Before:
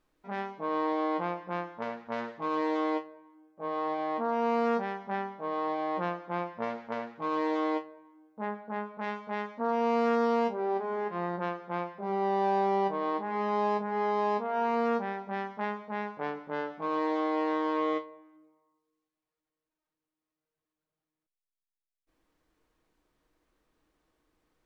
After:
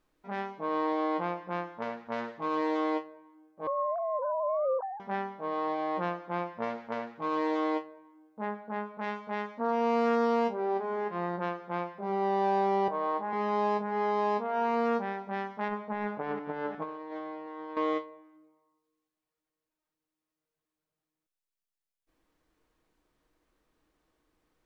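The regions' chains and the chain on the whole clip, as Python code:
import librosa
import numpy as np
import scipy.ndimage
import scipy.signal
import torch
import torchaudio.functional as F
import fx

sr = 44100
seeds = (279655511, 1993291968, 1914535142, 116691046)

y = fx.chain(x, sr, fx.sine_speech(),
    fx.lowpass(hz=1100.0, slope=24), at=(3.67, 5.0))
y = fx.chain(y, sr, fx.cheby_ripple_highpass(hz=160.0, ripple_db=6),
    fx.peak_eq(hz=1200.0, db=5.0, octaves=1.4), at=(12.88, 13.33))
y = fx.chain(y, sr, fx.reverse_delay(ms=357, wet_db=-11.5),
    fx.lowpass(hz=2200.0, slope=6),
    fx.over_compress(threshold_db=-35.0, ratio=-0.5), at=(15.68, 17.77))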